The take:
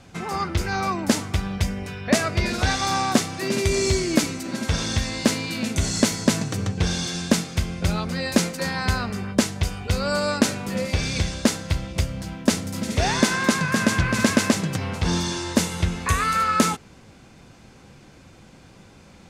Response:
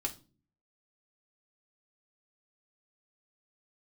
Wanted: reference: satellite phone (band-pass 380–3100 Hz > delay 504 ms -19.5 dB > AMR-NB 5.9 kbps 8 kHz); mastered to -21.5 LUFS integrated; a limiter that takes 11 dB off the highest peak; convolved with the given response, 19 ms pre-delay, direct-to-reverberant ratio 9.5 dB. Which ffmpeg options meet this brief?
-filter_complex "[0:a]alimiter=limit=0.188:level=0:latency=1,asplit=2[s0][s1];[1:a]atrim=start_sample=2205,adelay=19[s2];[s1][s2]afir=irnorm=-1:irlink=0,volume=0.282[s3];[s0][s3]amix=inputs=2:normalize=0,highpass=380,lowpass=3100,aecho=1:1:504:0.106,volume=3.16" -ar 8000 -c:a libopencore_amrnb -b:a 5900

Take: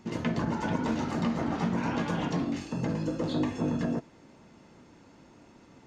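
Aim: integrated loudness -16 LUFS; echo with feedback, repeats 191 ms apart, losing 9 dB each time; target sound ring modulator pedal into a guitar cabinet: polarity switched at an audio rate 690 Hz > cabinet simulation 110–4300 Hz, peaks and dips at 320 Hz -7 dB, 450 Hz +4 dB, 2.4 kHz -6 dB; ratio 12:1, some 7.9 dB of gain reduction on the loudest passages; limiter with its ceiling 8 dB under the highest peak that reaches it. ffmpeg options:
-af "acompressor=threshold=0.0251:ratio=12,alimiter=level_in=2.11:limit=0.0631:level=0:latency=1,volume=0.473,aecho=1:1:191|382|573|764:0.355|0.124|0.0435|0.0152,aeval=exprs='val(0)*sgn(sin(2*PI*690*n/s))':c=same,highpass=110,equalizer=f=320:t=q:w=4:g=-7,equalizer=f=450:t=q:w=4:g=4,equalizer=f=2400:t=q:w=4:g=-6,lowpass=f=4300:w=0.5412,lowpass=f=4300:w=1.3066,volume=13.3"

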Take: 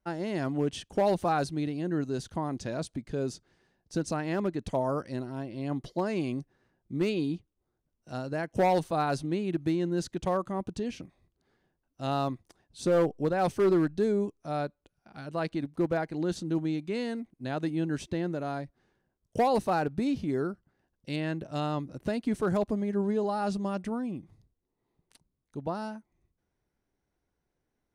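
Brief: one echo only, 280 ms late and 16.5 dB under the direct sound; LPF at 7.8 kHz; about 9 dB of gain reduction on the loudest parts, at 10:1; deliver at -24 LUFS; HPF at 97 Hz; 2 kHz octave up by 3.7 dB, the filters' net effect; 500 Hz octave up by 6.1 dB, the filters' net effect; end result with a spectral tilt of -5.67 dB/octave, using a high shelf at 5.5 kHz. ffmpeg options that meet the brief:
-af "highpass=97,lowpass=7800,equalizer=f=500:t=o:g=7.5,equalizer=f=2000:t=o:g=3.5,highshelf=f=5500:g=8,acompressor=threshold=0.0631:ratio=10,aecho=1:1:280:0.15,volume=2.24"

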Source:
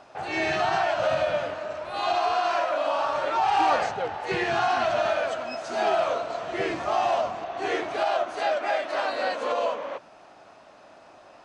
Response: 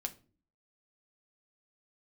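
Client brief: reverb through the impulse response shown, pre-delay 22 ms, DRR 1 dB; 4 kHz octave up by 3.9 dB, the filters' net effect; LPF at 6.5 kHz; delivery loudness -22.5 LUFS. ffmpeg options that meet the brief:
-filter_complex "[0:a]lowpass=6500,equalizer=f=4000:t=o:g=5.5,asplit=2[s0][s1];[1:a]atrim=start_sample=2205,adelay=22[s2];[s1][s2]afir=irnorm=-1:irlink=0,volume=0.944[s3];[s0][s3]amix=inputs=2:normalize=0,volume=1.06"

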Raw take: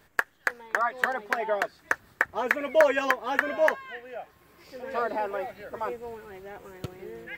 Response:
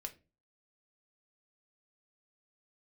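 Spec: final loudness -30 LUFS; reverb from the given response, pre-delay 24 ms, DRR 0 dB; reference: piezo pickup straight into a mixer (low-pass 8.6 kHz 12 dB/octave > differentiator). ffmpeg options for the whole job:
-filter_complex "[0:a]asplit=2[s0][s1];[1:a]atrim=start_sample=2205,adelay=24[s2];[s1][s2]afir=irnorm=-1:irlink=0,volume=1.41[s3];[s0][s3]amix=inputs=2:normalize=0,lowpass=8600,aderivative,volume=2.82"

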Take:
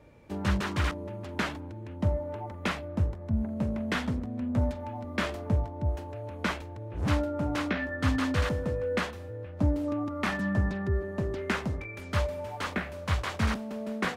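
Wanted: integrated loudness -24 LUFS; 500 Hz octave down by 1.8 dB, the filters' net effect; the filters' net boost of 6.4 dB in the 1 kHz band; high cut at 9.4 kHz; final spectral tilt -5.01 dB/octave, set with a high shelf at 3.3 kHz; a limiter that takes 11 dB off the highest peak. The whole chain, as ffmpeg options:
-af "lowpass=9400,equalizer=f=500:t=o:g=-5,equalizer=f=1000:t=o:g=8.5,highshelf=f=3300:g=5,volume=3.16,alimiter=limit=0.211:level=0:latency=1"

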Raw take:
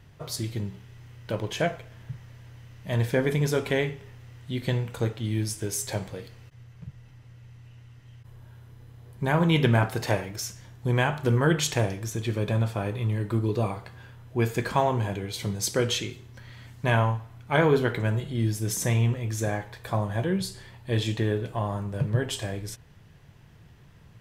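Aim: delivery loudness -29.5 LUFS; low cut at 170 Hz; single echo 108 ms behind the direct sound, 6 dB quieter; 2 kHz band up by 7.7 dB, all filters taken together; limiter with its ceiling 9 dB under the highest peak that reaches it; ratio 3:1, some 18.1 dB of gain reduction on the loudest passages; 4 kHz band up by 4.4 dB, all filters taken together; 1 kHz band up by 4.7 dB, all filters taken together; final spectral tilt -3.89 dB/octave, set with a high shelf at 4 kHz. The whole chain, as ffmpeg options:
-af "highpass=170,equalizer=f=1000:t=o:g=4,equalizer=f=2000:t=o:g=8.5,highshelf=f=4000:g=-4,equalizer=f=4000:t=o:g=4.5,acompressor=threshold=0.01:ratio=3,alimiter=level_in=1.68:limit=0.0631:level=0:latency=1,volume=0.596,aecho=1:1:108:0.501,volume=3.76"

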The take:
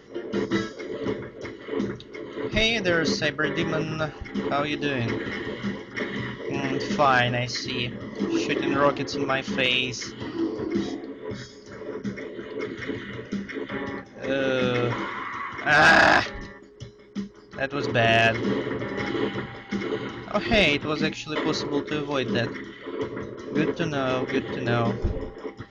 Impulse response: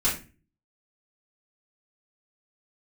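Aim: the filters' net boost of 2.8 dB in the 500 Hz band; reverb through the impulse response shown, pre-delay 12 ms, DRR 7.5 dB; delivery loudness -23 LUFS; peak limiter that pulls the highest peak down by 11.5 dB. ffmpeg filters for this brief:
-filter_complex "[0:a]equalizer=f=500:t=o:g=3.5,alimiter=limit=0.106:level=0:latency=1,asplit=2[s0][s1];[1:a]atrim=start_sample=2205,adelay=12[s2];[s1][s2]afir=irnorm=-1:irlink=0,volume=0.119[s3];[s0][s3]amix=inputs=2:normalize=0,volume=2"

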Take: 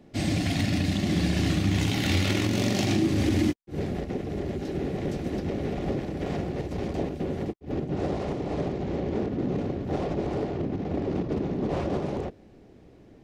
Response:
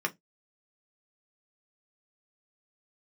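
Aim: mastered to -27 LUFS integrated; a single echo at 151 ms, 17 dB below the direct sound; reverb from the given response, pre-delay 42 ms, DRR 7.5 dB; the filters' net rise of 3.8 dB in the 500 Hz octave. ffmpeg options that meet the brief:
-filter_complex "[0:a]equalizer=f=500:t=o:g=5,aecho=1:1:151:0.141,asplit=2[s0][s1];[1:a]atrim=start_sample=2205,adelay=42[s2];[s1][s2]afir=irnorm=-1:irlink=0,volume=0.178[s3];[s0][s3]amix=inputs=2:normalize=0,volume=0.891"

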